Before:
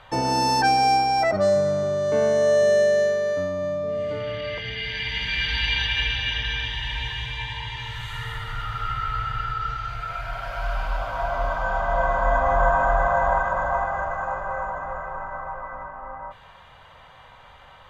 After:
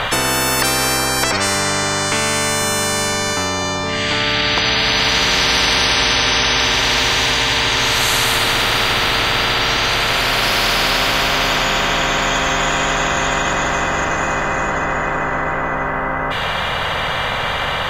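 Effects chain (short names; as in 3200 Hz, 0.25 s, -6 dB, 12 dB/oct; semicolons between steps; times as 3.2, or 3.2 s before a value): spectral compressor 10:1; gain +6 dB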